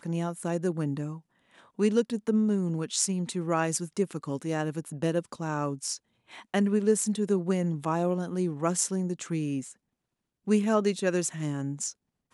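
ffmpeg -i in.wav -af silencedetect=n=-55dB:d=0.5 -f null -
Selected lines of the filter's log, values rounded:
silence_start: 9.74
silence_end: 10.47 | silence_duration: 0.73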